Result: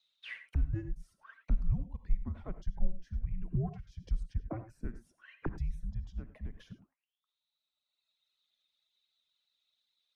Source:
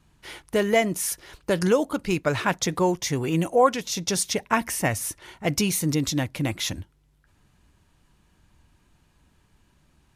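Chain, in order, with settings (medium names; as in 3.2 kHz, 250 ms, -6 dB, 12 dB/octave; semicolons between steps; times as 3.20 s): reverb removal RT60 1.8 s; auto-wah 380–4300 Hz, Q 21, down, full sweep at -24.5 dBFS; gated-style reverb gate 120 ms rising, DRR 11 dB; in parallel at +0.5 dB: compression, threshold -43 dBFS, peak gain reduction 15.5 dB; on the sum: frequency shift -350 Hz; trim +4.5 dB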